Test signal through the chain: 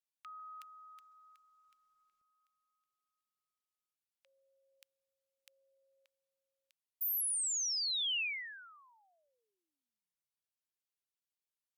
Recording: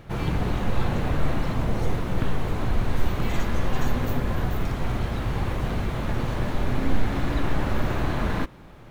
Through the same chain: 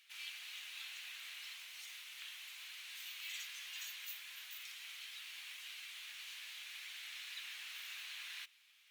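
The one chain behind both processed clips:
Chebyshev high-pass filter 2,600 Hz, order 3
level −4 dB
Opus 48 kbit/s 48,000 Hz

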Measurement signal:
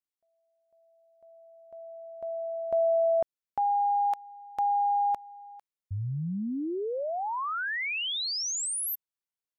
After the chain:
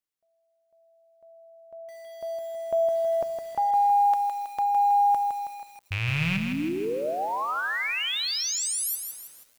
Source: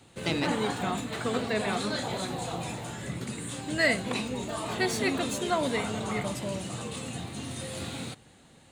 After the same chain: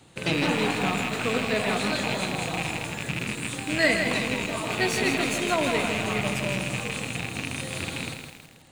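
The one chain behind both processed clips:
loose part that buzzes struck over −36 dBFS, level −20 dBFS
rectangular room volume 2,400 cubic metres, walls furnished, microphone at 0.55 metres
feedback echo at a low word length 161 ms, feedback 55%, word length 8 bits, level −6 dB
level +2 dB

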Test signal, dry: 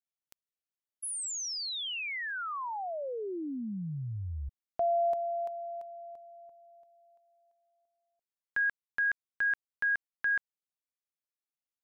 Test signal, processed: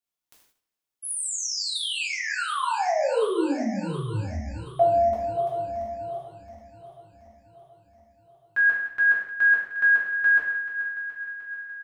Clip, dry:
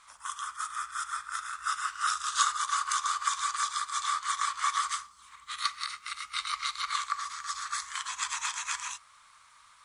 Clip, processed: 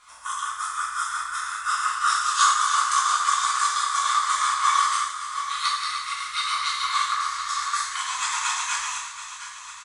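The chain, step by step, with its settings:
feedback delay that plays each chunk backwards 363 ms, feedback 72%, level −11 dB
dynamic equaliser 530 Hz, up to +6 dB, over −45 dBFS, Q 0.76
slap from a distant wall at 40 metres, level −24 dB
reverb whose tail is shaped and stops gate 210 ms falling, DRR −5.5 dB

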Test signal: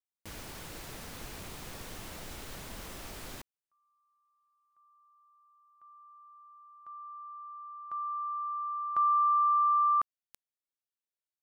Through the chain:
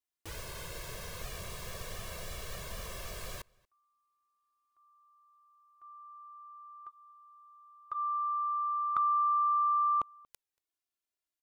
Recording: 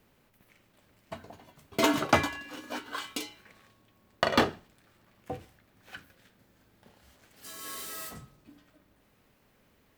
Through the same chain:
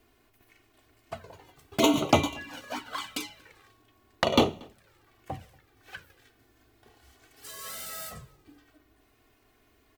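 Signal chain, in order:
flanger swept by the level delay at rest 2.9 ms, full sweep at −26.5 dBFS
slap from a distant wall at 40 metres, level −27 dB
level +4.5 dB

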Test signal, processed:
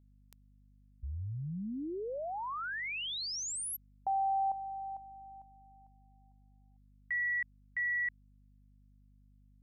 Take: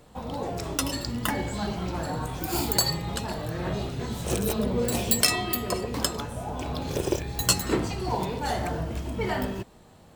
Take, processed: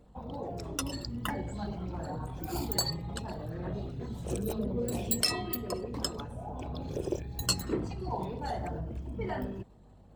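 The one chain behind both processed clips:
spectral envelope exaggerated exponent 1.5
mains hum 50 Hz, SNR 24 dB
level −6.5 dB

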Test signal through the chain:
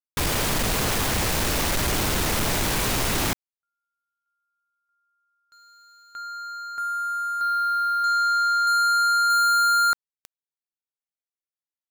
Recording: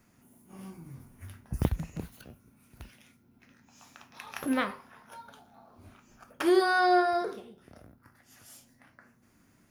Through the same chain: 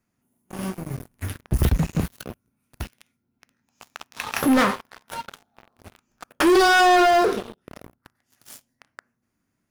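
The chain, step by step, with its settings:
leveller curve on the samples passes 5
level −2 dB

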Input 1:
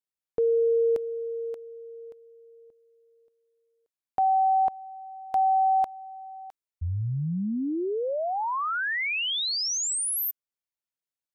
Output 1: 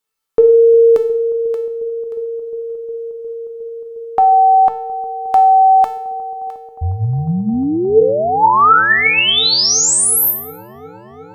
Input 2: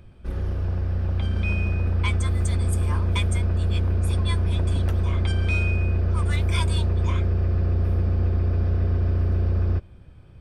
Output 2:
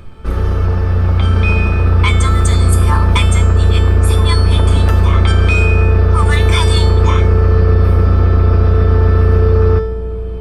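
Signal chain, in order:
parametric band 1,200 Hz +8 dB 0.34 octaves
mains-hum notches 50/100/150/200 Hz
tuned comb filter 440 Hz, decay 0.61 s, mix 90%
on a send: delay with a low-pass on its return 358 ms, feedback 85%, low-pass 580 Hz, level −16 dB
on the sum: boost into a limiter +32 dB
level −1 dB

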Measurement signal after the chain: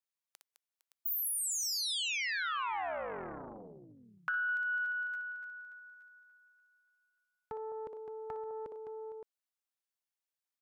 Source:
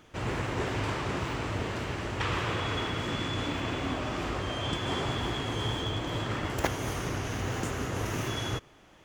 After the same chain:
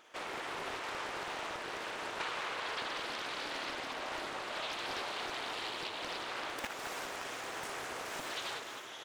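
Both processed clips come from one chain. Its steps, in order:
multi-tap delay 60/209/458/567 ms −6.5/−9.5/−16.5/−11 dB
downward compressor, threshold −31 dBFS
high-pass filter 570 Hz 12 dB per octave
highs frequency-modulated by the lows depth 0.68 ms
level −1 dB

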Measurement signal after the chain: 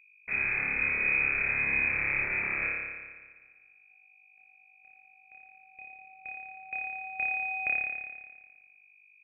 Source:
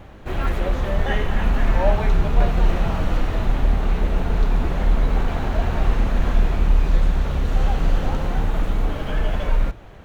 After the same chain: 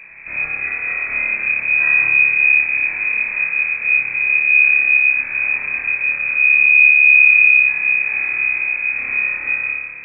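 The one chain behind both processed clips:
lower of the sound and its delayed copy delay 0.31 ms
hum removal 350 Hz, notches 2
downward compressor 2 to 1, threshold −23 dBFS
soft clipping −18 dBFS
on a send: flutter between parallel walls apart 4.9 metres, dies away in 1.5 s
on the sum: mains hum 50 Hz, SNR 28 dB
voice inversion scrambler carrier 2,500 Hz
level −2 dB

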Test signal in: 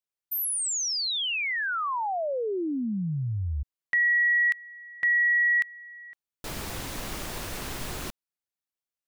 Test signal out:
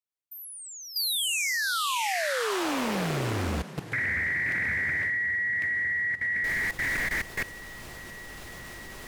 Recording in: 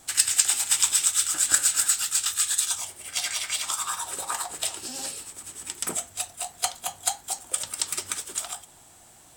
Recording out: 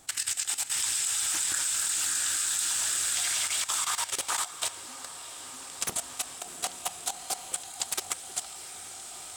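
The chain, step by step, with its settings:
dynamic equaliser 1,800 Hz, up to +5 dB, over −38 dBFS, Q 4.2
feedback delay with all-pass diffusion 680 ms, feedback 61%, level −3 dB
output level in coarse steps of 14 dB
highs frequency-modulated by the lows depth 0.89 ms

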